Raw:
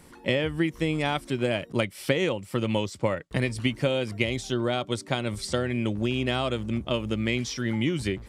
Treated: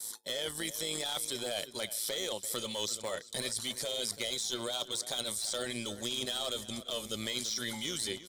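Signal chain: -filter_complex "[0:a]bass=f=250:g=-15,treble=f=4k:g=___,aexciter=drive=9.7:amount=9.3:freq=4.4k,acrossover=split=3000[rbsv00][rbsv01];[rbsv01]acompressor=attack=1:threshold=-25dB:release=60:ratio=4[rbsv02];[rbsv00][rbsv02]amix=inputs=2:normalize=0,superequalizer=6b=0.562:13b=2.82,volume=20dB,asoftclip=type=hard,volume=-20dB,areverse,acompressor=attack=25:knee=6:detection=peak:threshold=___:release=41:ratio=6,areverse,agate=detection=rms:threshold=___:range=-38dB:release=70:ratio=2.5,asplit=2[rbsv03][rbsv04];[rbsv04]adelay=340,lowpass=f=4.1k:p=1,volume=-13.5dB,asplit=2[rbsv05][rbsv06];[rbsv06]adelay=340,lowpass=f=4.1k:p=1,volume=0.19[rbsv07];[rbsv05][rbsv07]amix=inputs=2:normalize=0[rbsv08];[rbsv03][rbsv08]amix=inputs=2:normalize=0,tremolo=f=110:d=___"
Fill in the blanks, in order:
-4, -35dB, -36dB, 0.571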